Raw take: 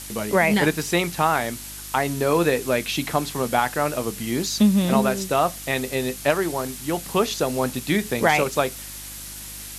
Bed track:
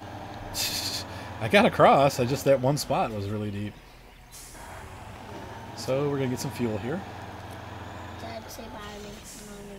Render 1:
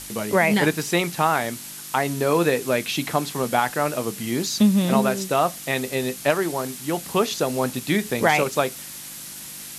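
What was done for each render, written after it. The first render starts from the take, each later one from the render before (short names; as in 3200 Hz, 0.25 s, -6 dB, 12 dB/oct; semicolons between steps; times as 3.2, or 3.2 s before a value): de-hum 50 Hz, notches 2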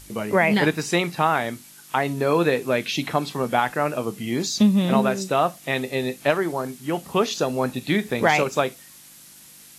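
noise print and reduce 10 dB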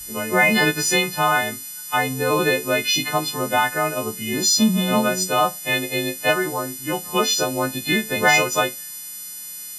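frequency quantiser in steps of 3 st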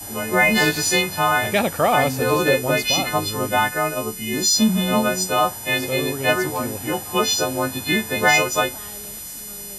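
add bed track -1 dB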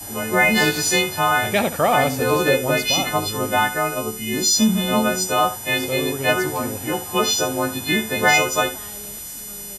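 echo 73 ms -14 dB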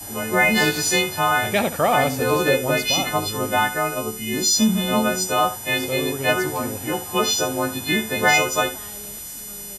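gain -1 dB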